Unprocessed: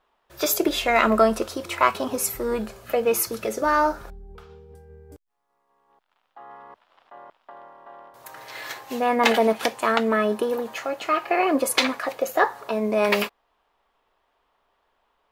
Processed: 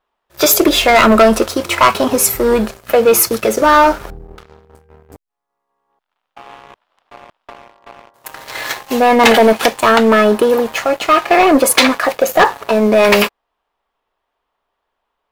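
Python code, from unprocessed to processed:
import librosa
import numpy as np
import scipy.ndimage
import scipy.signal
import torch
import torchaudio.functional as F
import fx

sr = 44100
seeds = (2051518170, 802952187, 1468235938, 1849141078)

y = fx.leveller(x, sr, passes=3)
y = y * librosa.db_to_amplitude(2.0)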